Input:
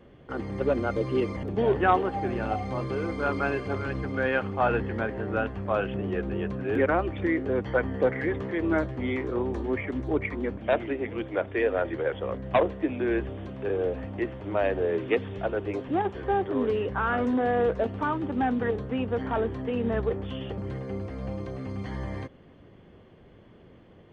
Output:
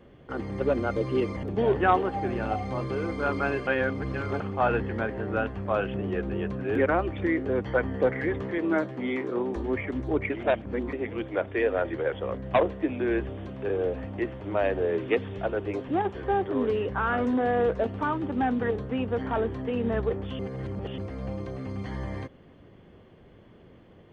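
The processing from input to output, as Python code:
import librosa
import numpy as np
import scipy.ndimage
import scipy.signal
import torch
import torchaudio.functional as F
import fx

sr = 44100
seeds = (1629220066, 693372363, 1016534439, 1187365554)

y = fx.highpass(x, sr, hz=140.0, slope=24, at=(8.58, 9.56))
y = fx.edit(y, sr, fx.reverse_span(start_s=3.67, length_s=0.73),
    fx.reverse_span(start_s=10.3, length_s=0.63),
    fx.reverse_span(start_s=20.39, length_s=0.59), tone=tone)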